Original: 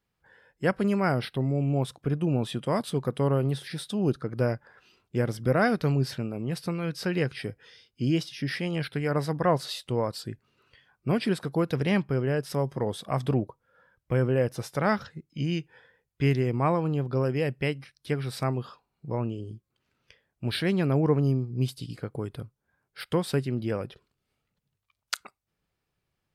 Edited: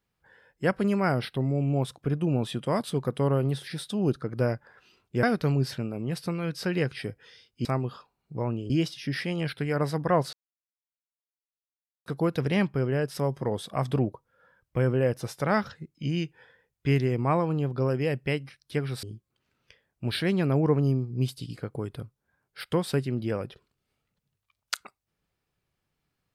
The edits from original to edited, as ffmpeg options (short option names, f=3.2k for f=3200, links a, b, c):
-filter_complex "[0:a]asplit=7[a][b][c][d][e][f][g];[a]atrim=end=5.232[h];[b]atrim=start=5.628:end=8.052[i];[c]atrim=start=18.378:end=19.432[j];[d]atrim=start=8.048:end=9.68,asetpts=PTS-STARTPTS,afade=t=out:st=1.628:d=0.004:c=hsin[k];[e]atrim=start=9.68:end=11.41,asetpts=PTS-STARTPTS,volume=0[l];[f]atrim=start=11.41:end=18.382,asetpts=PTS-STARTPTS,afade=t=in:d=0.004:c=hsin[m];[g]atrim=start=19.428[n];[h][i]acrossfade=d=0.004:c1=hsin:c2=hsin[o];[o][j]acrossfade=d=0.004:c1=hsin:c2=hsin[p];[k][l][m]concat=n=3:v=0:a=1[q];[p][q]acrossfade=d=0.004:c1=hsin:c2=hsin[r];[r][n]acrossfade=d=0.004:c1=hsin:c2=hsin"